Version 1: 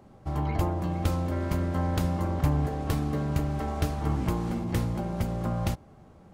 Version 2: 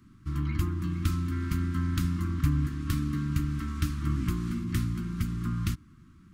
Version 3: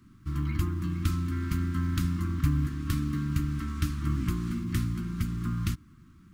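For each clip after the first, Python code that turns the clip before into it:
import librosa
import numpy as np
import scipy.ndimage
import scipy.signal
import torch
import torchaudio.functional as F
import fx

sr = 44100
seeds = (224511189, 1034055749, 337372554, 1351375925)

y1 = scipy.signal.sosfilt(scipy.signal.ellip(3, 1.0, 60, [310.0, 1200.0], 'bandstop', fs=sr, output='sos'), x)
y2 = fx.quant_companded(y1, sr, bits=8)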